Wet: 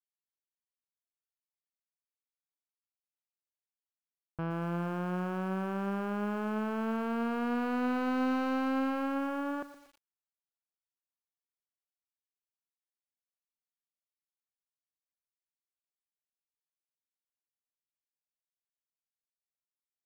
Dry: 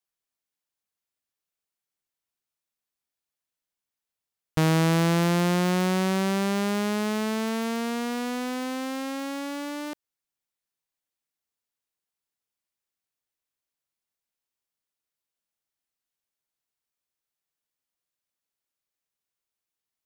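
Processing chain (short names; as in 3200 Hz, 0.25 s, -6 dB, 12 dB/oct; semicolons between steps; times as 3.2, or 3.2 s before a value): Doppler pass-by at 8.48, 14 m/s, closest 8.9 m; steep low-pass 1700 Hz 72 dB/oct; tilt shelf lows -4 dB, about 920 Hz; sample leveller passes 2; lo-fi delay 0.117 s, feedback 55%, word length 8-bit, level -13.5 dB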